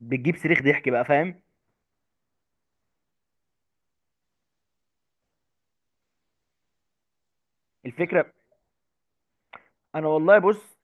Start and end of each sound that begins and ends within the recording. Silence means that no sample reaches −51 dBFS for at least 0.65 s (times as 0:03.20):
0:07.84–0:08.31